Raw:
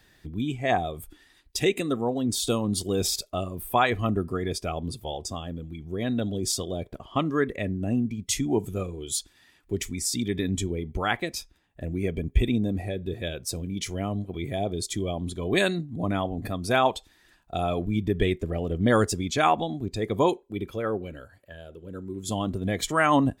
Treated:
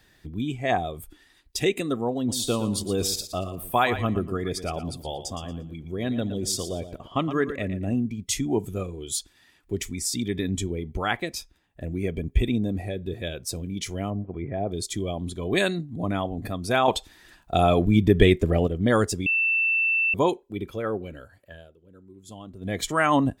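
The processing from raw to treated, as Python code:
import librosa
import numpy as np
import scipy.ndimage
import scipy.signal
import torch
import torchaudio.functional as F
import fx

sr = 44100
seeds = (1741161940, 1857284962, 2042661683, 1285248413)

y = fx.echo_feedback(x, sr, ms=116, feedback_pct=24, wet_db=-11.5, at=(2.27, 7.94), fade=0.02)
y = fx.lowpass(y, sr, hz=1900.0, slope=24, at=(14.1, 14.71))
y = fx.edit(y, sr, fx.clip_gain(start_s=16.88, length_s=1.79, db=7.5),
    fx.bleep(start_s=19.26, length_s=0.88, hz=2670.0, db=-19.5),
    fx.fade_down_up(start_s=21.54, length_s=1.22, db=-13.5, fade_s=0.2), tone=tone)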